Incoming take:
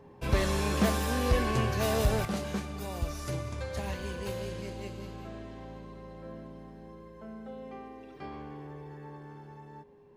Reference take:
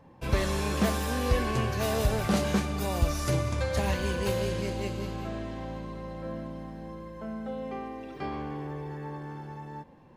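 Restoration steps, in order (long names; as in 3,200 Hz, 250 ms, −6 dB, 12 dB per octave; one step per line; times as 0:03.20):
clipped peaks rebuilt −17 dBFS
notch filter 410 Hz, Q 30
level 0 dB, from 0:02.25 +7.5 dB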